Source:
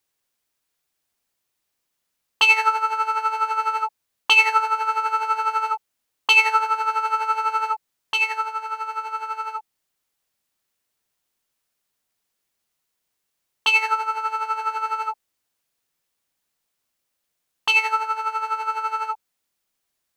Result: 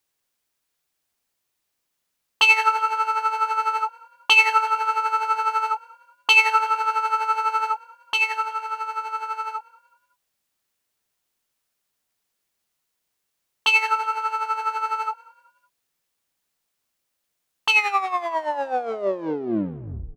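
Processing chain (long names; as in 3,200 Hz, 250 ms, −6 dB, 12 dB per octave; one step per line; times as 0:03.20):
turntable brake at the end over 2.47 s
echo with shifted repeats 186 ms, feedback 40%, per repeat +38 Hz, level −23.5 dB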